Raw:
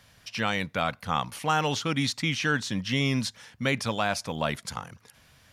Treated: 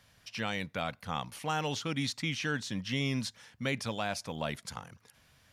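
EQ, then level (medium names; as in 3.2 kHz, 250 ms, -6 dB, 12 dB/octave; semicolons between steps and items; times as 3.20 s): dynamic bell 1.2 kHz, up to -4 dB, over -37 dBFS, Q 1.6; -6.0 dB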